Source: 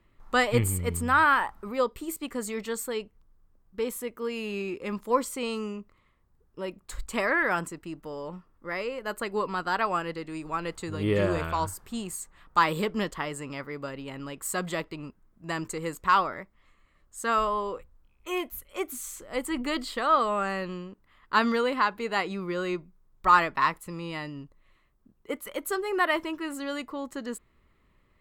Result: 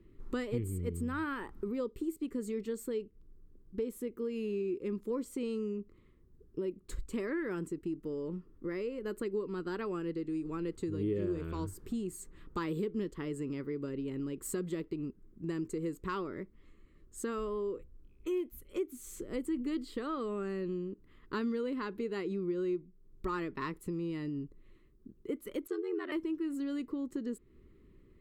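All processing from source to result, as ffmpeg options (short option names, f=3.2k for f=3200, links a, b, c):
-filter_complex "[0:a]asettb=1/sr,asplit=3[a][b][c];[a]atrim=end=25.674[d];[b]atrim=start=25.67:end=26.12,asetpts=PTS-STARTPTS,afade=t=in:d=0.004:c=qsin,afade=t=out:st=0.446:d=0.004:c=qsin,highpass=370,lowpass=5.5k,aeval=exprs='val(0)*sin(2*PI*44*n/s)':c=same[e];[c]atrim=start=26.116[f];[d][e]acrossfade=d=0.004:c1=hsin:c2=qsin[g];[g][f]acrossfade=d=0.004:c1=qsin:c2=hsin,lowshelf=f=520:t=q:w=3:g=10.5,acompressor=threshold=-31dB:ratio=3,volume=-5.5dB"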